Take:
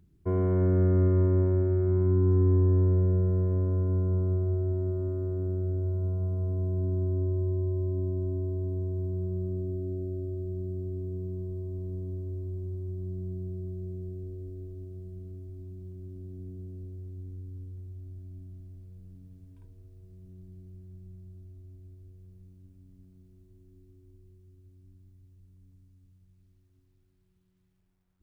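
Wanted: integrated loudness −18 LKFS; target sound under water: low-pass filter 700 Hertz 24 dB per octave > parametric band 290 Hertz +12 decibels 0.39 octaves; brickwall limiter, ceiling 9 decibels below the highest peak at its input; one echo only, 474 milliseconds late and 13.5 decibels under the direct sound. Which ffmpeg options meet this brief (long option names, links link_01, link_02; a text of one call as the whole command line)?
ffmpeg -i in.wav -af "alimiter=limit=-24dB:level=0:latency=1,lowpass=frequency=700:width=0.5412,lowpass=frequency=700:width=1.3066,equalizer=frequency=290:width_type=o:width=0.39:gain=12,aecho=1:1:474:0.211,volume=14.5dB" out.wav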